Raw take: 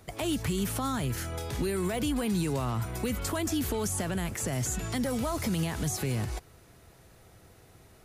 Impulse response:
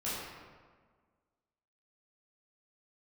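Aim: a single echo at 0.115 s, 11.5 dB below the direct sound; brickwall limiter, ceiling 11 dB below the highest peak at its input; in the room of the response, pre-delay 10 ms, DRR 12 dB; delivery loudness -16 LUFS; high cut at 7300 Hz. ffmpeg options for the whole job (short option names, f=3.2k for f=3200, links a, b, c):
-filter_complex "[0:a]lowpass=7.3k,alimiter=level_in=6.5dB:limit=-24dB:level=0:latency=1,volume=-6.5dB,aecho=1:1:115:0.266,asplit=2[a][b];[1:a]atrim=start_sample=2205,adelay=10[c];[b][c]afir=irnorm=-1:irlink=0,volume=-17dB[d];[a][d]amix=inputs=2:normalize=0,volume=22dB"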